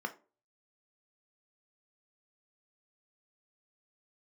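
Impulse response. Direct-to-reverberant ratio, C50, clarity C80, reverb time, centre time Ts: 4.5 dB, 16.0 dB, 22.0 dB, 0.35 s, 6 ms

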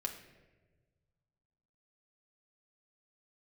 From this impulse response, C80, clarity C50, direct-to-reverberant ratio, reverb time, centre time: 11.0 dB, 9.0 dB, 2.0 dB, 1.3 s, 19 ms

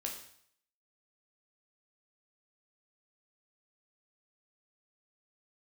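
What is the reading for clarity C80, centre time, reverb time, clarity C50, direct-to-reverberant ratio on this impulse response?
9.5 dB, 27 ms, 0.65 s, 6.5 dB, 0.0 dB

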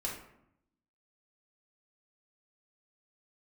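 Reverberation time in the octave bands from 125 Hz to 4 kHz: 1.0, 1.0, 0.75, 0.75, 0.60, 0.45 s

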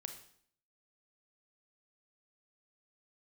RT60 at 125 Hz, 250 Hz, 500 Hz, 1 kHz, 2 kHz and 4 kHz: 0.65, 0.70, 0.60, 0.60, 0.55, 0.55 s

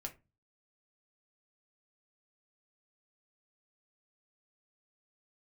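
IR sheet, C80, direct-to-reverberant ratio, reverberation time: 23.5 dB, 2.0 dB, 0.25 s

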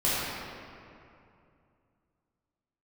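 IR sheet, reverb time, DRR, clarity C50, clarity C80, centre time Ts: 2.6 s, -10.5 dB, -4.5 dB, -2.5 dB, 0.171 s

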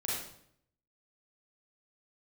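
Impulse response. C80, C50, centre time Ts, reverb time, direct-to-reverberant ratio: 3.0 dB, -1.5 dB, 67 ms, 0.70 s, -6.0 dB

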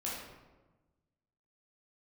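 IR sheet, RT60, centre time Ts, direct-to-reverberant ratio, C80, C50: 1.2 s, 70 ms, -6.5 dB, 3.5 dB, 0.0 dB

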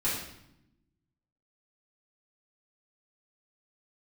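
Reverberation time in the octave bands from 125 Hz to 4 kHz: 1.4, 1.4, 0.85, 0.75, 0.75, 0.70 s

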